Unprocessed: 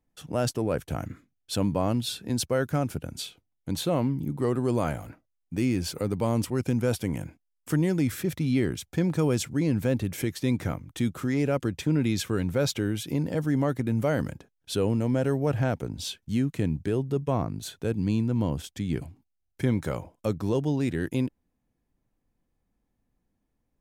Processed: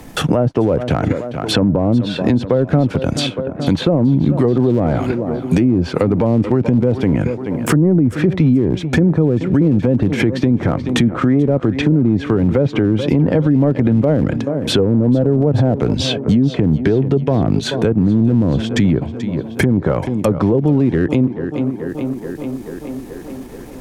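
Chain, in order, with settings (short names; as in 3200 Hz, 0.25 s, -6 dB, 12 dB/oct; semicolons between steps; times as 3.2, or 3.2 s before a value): treble ducked by the level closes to 490 Hz, closed at -21 dBFS; low shelf 80 Hz -8.5 dB; transient shaper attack -2 dB, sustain -7 dB; tape echo 0.431 s, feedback 55%, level -18.5 dB, low-pass 4900 Hz; maximiser +28 dB; three-band squash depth 70%; gain -4.5 dB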